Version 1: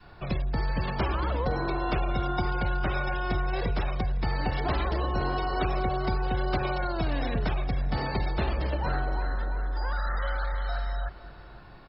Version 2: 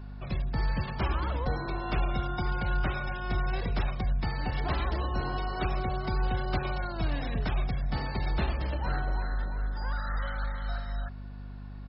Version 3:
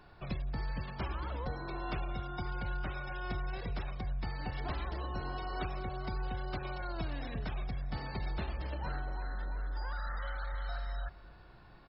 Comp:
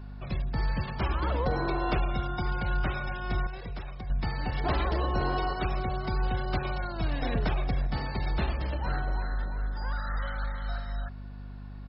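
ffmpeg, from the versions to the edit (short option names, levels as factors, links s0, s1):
-filter_complex "[0:a]asplit=3[s0][s1][s2];[1:a]asplit=5[s3][s4][s5][s6][s7];[s3]atrim=end=1.222[s8];[s0]atrim=start=1.218:end=1.982[s9];[s4]atrim=start=1.978:end=3.472[s10];[2:a]atrim=start=3.468:end=4.102[s11];[s5]atrim=start=4.098:end=4.642[s12];[s1]atrim=start=4.638:end=5.532[s13];[s6]atrim=start=5.528:end=7.222[s14];[s2]atrim=start=7.218:end=7.872[s15];[s7]atrim=start=7.868[s16];[s8][s9]acrossfade=d=0.004:c1=hsin:c2=hsin[s17];[s17][s10]acrossfade=d=0.004:c1=hsin:c2=hsin[s18];[s18][s11]acrossfade=d=0.004:c1=hsin:c2=hsin[s19];[s19][s12]acrossfade=d=0.004:c1=hsin:c2=hsin[s20];[s20][s13]acrossfade=d=0.004:c1=hsin:c2=hsin[s21];[s21][s14]acrossfade=d=0.004:c1=hsin:c2=hsin[s22];[s22][s15]acrossfade=d=0.004:c1=hsin:c2=hsin[s23];[s23][s16]acrossfade=d=0.004:c1=hsin:c2=hsin"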